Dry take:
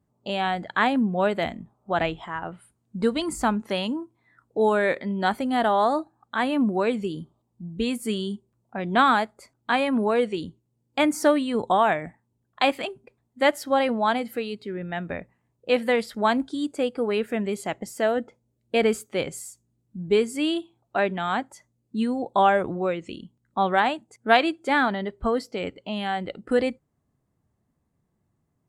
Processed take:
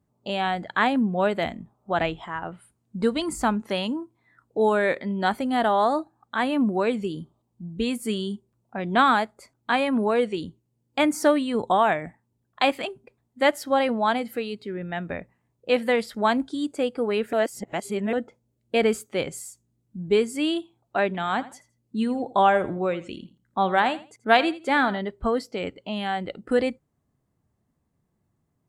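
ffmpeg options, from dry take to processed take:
ffmpeg -i in.wav -filter_complex "[0:a]asettb=1/sr,asplit=3[link_01][link_02][link_03];[link_01]atrim=end=21.064[link_04];[link_02]atrim=start=21.06:end=24.99,asetpts=PTS-STARTPTS,afade=type=in:duration=0.004:curve=qsin,afade=type=out:start_time=3.926:duration=0.004:curve=qsin,aecho=1:1:83|166:0.141|0.0339,atrim=end_sample=173313[link_05];[link_03]atrim=start=24.986[link_06];[link_04][link_05]acrossfade=duration=0.004:curve1=hsin:curve2=qsin[link_07];[link_07][link_06]acrossfade=duration=0.004:curve1=qsin:curve2=hsin,asplit=3[link_08][link_09][link_10];[link_08]atrim=end=17.332[link_11];[link_09]atrim=start=17.328:end=18.132,asetpts=PTS-STARTPTS,areverse[link_12];[link_10]atrim=start=18.128[link_13];[link_11][link_12]acrossfade=duration=0.004:curve1=hsin:curve2=hsin[link_14];[link_14][link_13]acrossfade=duration=0.004:curve1=hsin:curve2=hsin" out.wav

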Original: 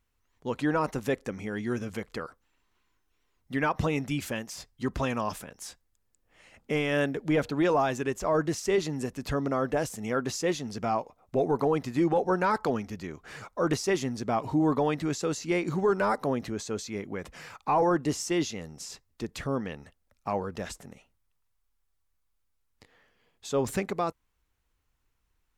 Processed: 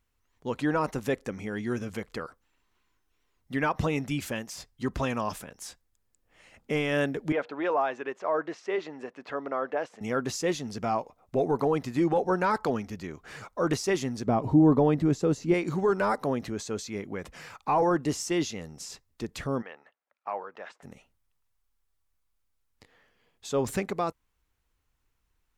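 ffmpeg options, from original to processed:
ffmpeg -i in.wav -filter_complex "[0:a]asettb=1/sr,asplit=3[link_01][link_02][link_03];[link_01]atrim=end=7.324[link_04];[link_02]atrim=start=7.32:end=10.01,asetpts=PTS-STARTPTS,afade=type=in:duration=0.004:curve=qsin,afade=type=out:start_time=2.686:duration=0.004:curve=qsin,highpass=460,lowpass=2400[link_05];[link_03]atrim=start=10.006[link_06];[link_04][link_05]acrossfade=duration=0.004:curve1=hsin:curve2=qsin[link_07];[link_07][link_06]acrossfade=duration=0.004:curve1=qsin:curve2=hsin,asettb=1/sr,asplit=3[link_08][link_09][link_10];[link_08]atrim=end=14.274[link_11];[link_09]atrim=start=14.27:end=15.54,asetpts=PTS-STARTPTS,afade=type=in:duration=0.004:curve=qsin,afade=type=out:start_time=1.266:duration=0.004:curve=qsin,tiltshelf=frequency=840:gain=7.5[link_12];[link_10]atrim=start=15.536[link_13];[link_11][link_12]acrossfade=duration=0.004:curve1=hsin:curve2=qsin[link_14];[link_14][link_13]acrossfade=duration=0.004:curve1=qsin:curve2=hsin,asplit=3[link_15][link_16][link_17];[link_15]afade=type=out:start_time=19.61:duration=0.02[link_18];[link_16]highpass=680,lowpass=2100,afade=type=in:start_time=19.61:duration=0.02,afade=type=out:start_time=20.82:duration=0.02[link_19];[link_17]afade=type=in:start_time=20.82:duration=0.02[link_20];[link_18][link_19][link_20]amix=inputs=3:normalize=0" out.wav

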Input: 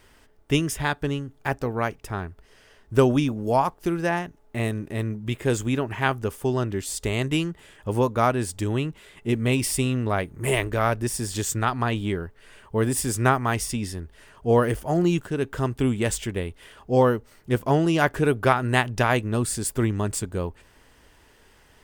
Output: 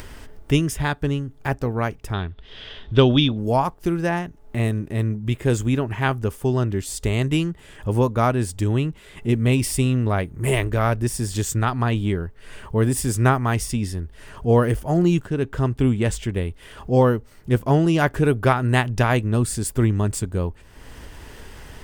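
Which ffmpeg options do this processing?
ffmpeg -i in.wav -filter_complex "[0:a]asettb=1/sr,asplit=3[link_01][link_02][link_03];[link_01]atrim=end=2.134[link_04];[link_02]atrim=start=2.13:end=3.38,asetpts=PTS-STARTPTS,afade=type=in:duration=0.004:curve=qsin,afade=type=out:start_time=1.246:duration=0.004:curve=qsin,lowpass=frequency=3500:width_type=q:width=8.5[link_05];[link_03]atrim=start=3.376[link_06];[link_04][link_05]acrossfade=duration=0.004:curve1=hsin:curve2=qsin[link_07];[link_07][link_06]acrossfade=duration=0.004:curve1=qsin:curve2=hsin,asettb=1/sr,asplit=3[link_08][link_09][link_10];[link_08]atrim=end=15.224[link_11];[link_09]atrim=start=15.22:end=16.33,asetpts=PTS-STARTPTS,afade=type=in:duration=0.004:curve=qsin,afade=type=out:start_time=1.106:duration=0.004:curve=qsin,highshelf=frequency=7500:gain=-7[link_12];[link_10]atrim=start=16.326[link_13];[link_11][link_12]acrossfade=duration=0.004:curve1=hsin:curve2=qsin[link_14];[link_14][link_13]acrossfade=duration=0.004:curve1=qsin:curve2=hsin,lowshelf=frequency=210:gain=8,acompressor=mode=upward:threshold=-27dB:ratio=2.5" out.wav

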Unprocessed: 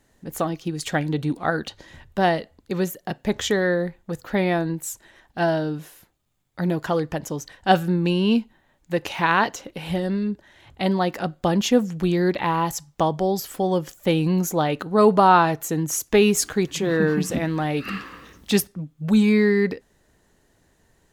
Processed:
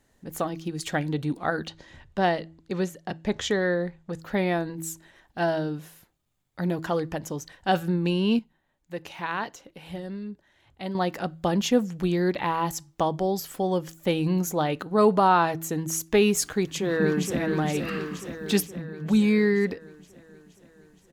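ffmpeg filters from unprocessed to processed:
ffmpeg -i in.wav -filter_complex "[0:a]asettb=1/sr,asplit=3[link_01][link_02][link_03];[link_01]atrim=end=1.674[link_04];[link_02]atrim=start=1.67:end=4.21,asetpts=PTS-STARTPTS,afade=type=in:duration=0.004:curve=qsin,afade=type=out:start_time=2.536:duration=0.004:curve=qsin,lowpass=7900[link_05];[link_03]atrim=start=4.206[link_06];[link_04][link_05]acrossfade=duration=0.004:curve1=hsin:curve2=qsin[link_07];[link_07][link_06]acrossfade=duration=0.004:curve1=qsin:curve2=hsin,asplit=2[link_08][link_09];[link_09]afade=type=in:start_time=16.56:duration=0.01,afade=type=out:start_time=17.4:duration=0.01,aecho=0:1:470|940|1410|1880|2350|2820|3290|3760|4230|4700:0.501187|0.325772|0.211752|0.137639|0.0894651|0.0581523|0.037799|0.0245693|0.0159701|0.0103805[link_10];[link_08][link_10]amix=inputs=2:normalize=0,asplit=3[link_11][link_12][link_13];[link_11]atrim=end=8.392[link_14];[link_12]atrim=start=8.388:end=10.952,asetpts=PTS-STARTPTS,volume=-7.5dB[link_15];[link_13]atrim=start=10.948[link_16];[link_14][link_15]acrossfade=duration=0.004:curve1=hsin:curve2=hsin[link_17];[link_17][link_16]acrossfade=duration=0.004:curve1=hsin:curve2=hsin,bandreject=frequency=162.6:width_type=h:width=4,bandreject=frequency=325.2:width_type=h:width=4,alimiter=level_in=4.5dB:limit=-1dB:release=50:level=0:latency=1,volume=-8dB" out.wav

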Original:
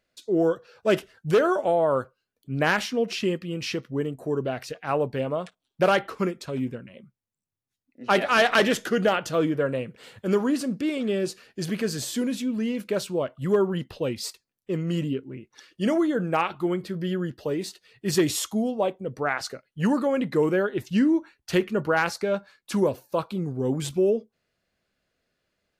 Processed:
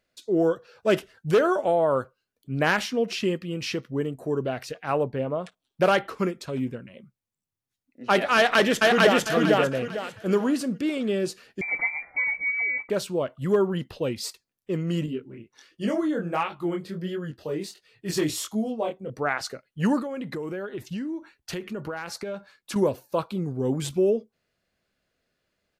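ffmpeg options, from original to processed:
ffmpeg -i in.wav -filter_complex "[0:a]asplit=3[link_01][link_02][link_03];[link_01]afade=type=out:start_time=5.03:duration=0.02[link_04];[link_02]highshelf=frequency=2600:gain=-11.5,afade=type=in:start_time=5.03:duration=0.02,afade=type=out:start_time=5.43:duration=0.02[link_05];[link_03]afade=type=in:start_time=5.43:duration=0.02[link_06];[link_04][link_05][link_06]amix=inputs=3:normalize=0,asplit=2[link_07][link_08];[link_08]afade=type=in:start_time=8.36:duration=0.01,afade=type=out:start_time=9.24:duration=0.01,aecho=0:1:450|900|1350|1800:1|0.3|0.09|0.027[link_09];[link_07][link_09]amix=inputs=2:normalize=0,asettb=1/sr,asplit=3[link_10][link_11][link_12];[link_10]atrim=end=11.614[link_13];[link_11]atrim=start=11.61:end=12.9,asetpts=PTS-STARTPTS,afade=type=in:duration=0.004:curve=qsin,afade=type=out:start_time=1.286:duration=0.004:curve=qsin,lowpass=frequency=2100:width_type=q:width=0.5098,lowpass=frequency=2100:width_type=q:width=0.6013,lowpass=frequency=2100:width_type=q:width=0.9,lowpass=frequency=2100:width_type=q:width=2.563,afreqshift=-2500[link_14];[link_12]atrim=start=12.896[link_15];[link_13][link_14]acrossfade=duration=0.004:curve1=hsin:curve2=qsin[link_16];[link_16][link_15]acrossfade=duration=0.004:curve1=qsin:curve2=hsin,asettb=1/sr,asplit=3[link_17][link_18][link_19];[link_17]atrim=end=15.064[link_20];[link_18]atrim=start=15.06:end=19.1,asetpts=PTS-STARTPTS,afade=type=in:duration=0.004:curve=qsin,afade=type=out:start_time=4.036:duration=0.004:curve=qsin,flanger=delay=18.5:depth=7.8:speed=1.4[link_21];[link_19]atrim=start=19.096[link_22];[link_20][link_21]acrossfade=duration=0.004:curve1=hsin:curve2=qsin[link_23];[link_23][link_22]acrossfade=duration=0.004:curve1=qsin:curve2=hsin,asettb=1/sr,asplit=3[link_24][link_25][link_26];[link_24]atrim=end=19.994[link_27];[link_25]atrim=start=19.99:end=22.76,asetpts=PTS-STARTPTS,afade=type=in:duration=0.004:curve=qsin,afade=type=out:start_time=2.766:duration=0.004:curve=qsin,acompressor=threshold=-29dB:ratio=8:attack=3.2:release=140:knee=1:detection=peak[link_28];[link_26]atrim=start=22.756[link_29];[link_27][link_28]acrossfade=duration=0.004:curve1=hsin:curve2=qsin[link_30];[link_30][link_29]acrossfade=duration=0.004:curve1=qsin:curve2=hsin" out.wav

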